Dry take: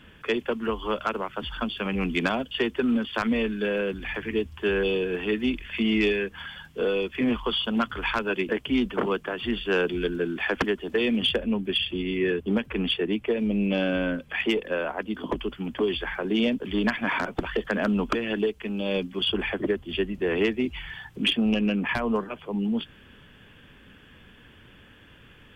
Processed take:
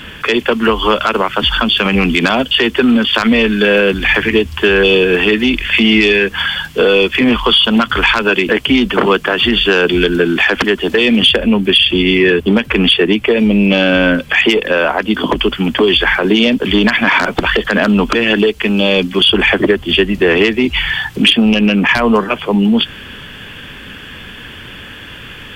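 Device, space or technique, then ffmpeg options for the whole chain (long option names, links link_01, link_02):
mastering chain: -af "equalizer=frequency=4400:width_type=o:width=0.41:gain=3.5,acompressor=threshold=-25dB:ratio=3,asoftclip=type=tanh:threshold=-15.5dB,tiltshelf=frequency=1200:gain=-3.5,alimiter=level_in=21.5dB:limit=-1dB:release=50:level=0:latency=1,volume=-1dB"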